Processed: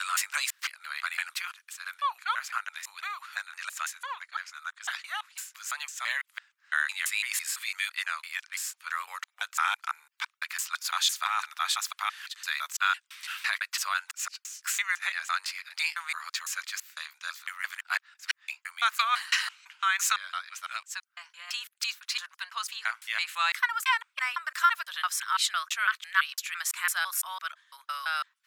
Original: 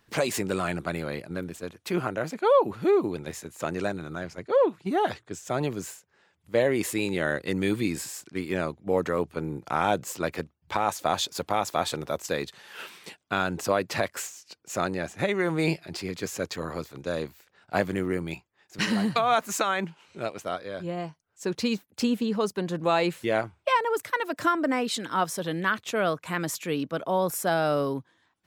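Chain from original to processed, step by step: slices in reverse order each 0.168 s, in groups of 4; steep high-pass 1200 Hz 36 dB/oct; gain +4 dB

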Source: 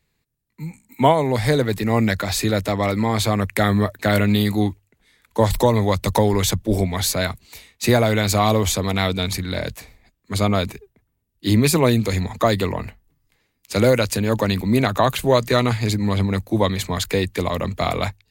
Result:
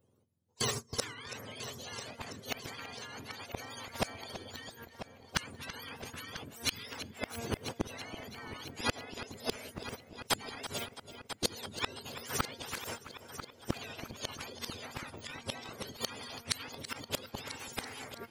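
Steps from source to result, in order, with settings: spectrum mirrored in octaves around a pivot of 980 Hz; de-hum 231.9 Hz, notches 7; gate -43 dBFS, range -28 dB; compressor 16:1, threshold -26 dBFS, peak gain reduction 20.5 dB; flipped gate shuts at -23 dBFS, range -34 dB; formant shift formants +6 st; multi-head echo 0.331 s, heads first and third, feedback 51%, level -22.5 dB; spectral compressor 2:1; gain +10 dB

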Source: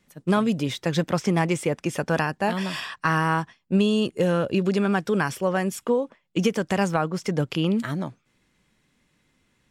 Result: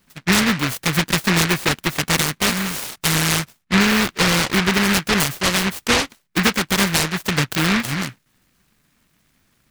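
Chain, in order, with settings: 2.9–3.9 high shelf 2700 Hz -9.5 dB; noise-modulated delay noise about 1700 Hz, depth 0.48 ms; gain +4.5 dB

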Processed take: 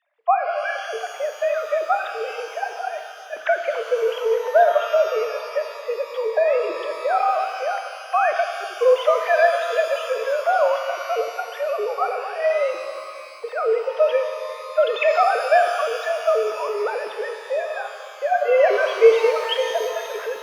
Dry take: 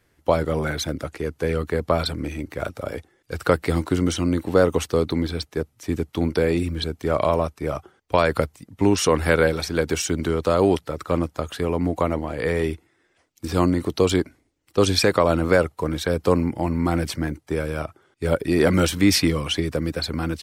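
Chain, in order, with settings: sine-wave speech; frequency shift +160 Hz; shimmer reverb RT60 2.3 s, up +12 st, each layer -8 dB, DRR 5.5 dB

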